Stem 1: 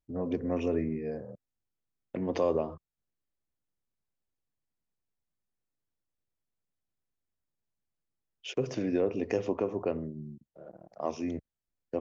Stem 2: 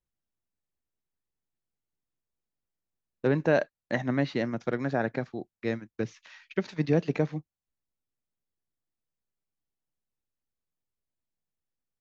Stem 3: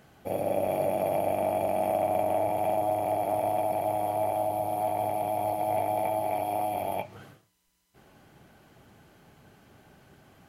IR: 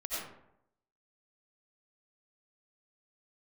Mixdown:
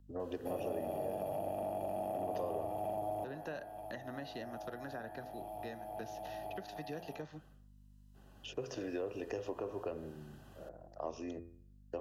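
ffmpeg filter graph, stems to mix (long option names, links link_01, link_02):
-filter_complex "[0:a]equalizer=frequency=200:width=1.5:gain=-12,volume=0dB[link_01];[1:a]aeval=exprs='val(0)+0.00447*(sin(2*PI*50*n/s)+sin(2*PI*2*50*n/s)/2+sin(2*PI*3*50*n/s)/3+sin(2*PI*4*50*n/s)/4+sin(2*PI*5*50*n/s)/5)':channel_layout=same,tiltshelf=frequency=920:gain=-6.5,acompressor=threshold=-38dB:ratio=2,volume=-5.5dB,asplit=2[link_02][link_03];[2:a]adelay=200,volume=-2dB[link_04];[link_03]apad=whole_len=471341[link_05];[link_04][link_05]sidechaincompress=threshold=-54dB:ratio=8:attack=26:release=1290[link_06];[link_01][link_02][link_06]amix=inputs=3:normalize=0,bandreject=frequency=85.21:width_type=h:width=4,bandreject=frequency=170.42:width_type=h:width=4,bandreject=frequency=255.63:width_type=h:width=4,bandreject=frequency=340.84:width_type=h:width=4,bandreject=frequency=426.05:width_type=h:width=4,bandreject=frequency=511.26:width_type=h:width=4,bandreject=frequency=596.47:width_type=h:width=4,bandreject=frequency=681.68:width_type=h:width=4,bandreject=frequency=766.89:width_type=h:width=4,bandreject=frequency=852.1:width_type=h:width=4,bandreject=frequency=937.31:width_type=h:width=4,bandreject=frequency=1022.52:width_type=h:width=4,bandreject=frequency=1107.73:width_type=h:width=4,bandreject=frequency=1192.94:width_type=h:width=4,bandreject=frequency=1278.15:width_type=h:width=4,bandreject=frequency=1363.36:width_type=h:width=4,bandreject=frequency=1448.57:width_type=h:width=4,bandreject=frequency=1533.78:width_type=h:width=4,bandreject=frequency=1618.99:width_type=h:width=4,bandreject=frequency=1704.2:width_type=h:width=4,bandreject=frequency=1789.41:width_type=h:width=4,bandreject=frequency=1874.62:width_type=h:width=4,bandreject=frequency=1959.83:width_type=h:width=4,bandreject=frequency=2045.04:width_type=h:width=4,bandreject=frequency=2130.25:width_type=h:width=4,bandreject=frequency=2215.46:width_type=h:width=4,bandreject=frequency=2300.67:width_type=h:width=4,bandreject=frequency=2385.88:width_type=h:width=4,bandreject=frequency=2471.09:width_type=h:width=4,acrossover=split=230|700[link_07][link_08][link_09];[link_07]acompressor=threshold=-51dB:ratio=4[link_10];[link_08]acompressor=threshold=-40dB:ratio=4[link_11];[link_09]acompressor=threshold=-47dB:ratio=4[link_12];[link_10][link_11][link_12]amix=inputs=3:normalize=0,asuperstop=centerf=2200:order=4:qfactor=4.5"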